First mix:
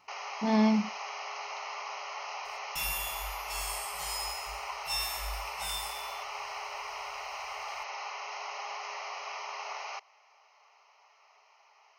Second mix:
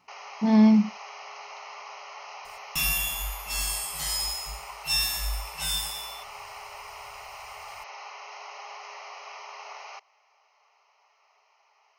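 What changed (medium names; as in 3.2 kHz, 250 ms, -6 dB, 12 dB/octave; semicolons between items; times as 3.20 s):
first sound -3.0 dB; second sound +8.0 dB; master: add peaking EQ 200 Hz +8.5 dB 1 oct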